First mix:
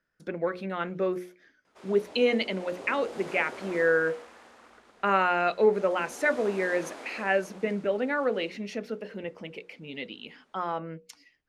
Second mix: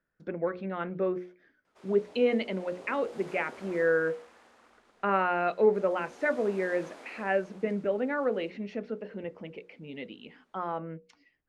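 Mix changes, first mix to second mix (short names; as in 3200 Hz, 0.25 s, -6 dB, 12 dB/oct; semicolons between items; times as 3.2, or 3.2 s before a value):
speech: add tape spacing loss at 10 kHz 27 dB; background -6.0 dB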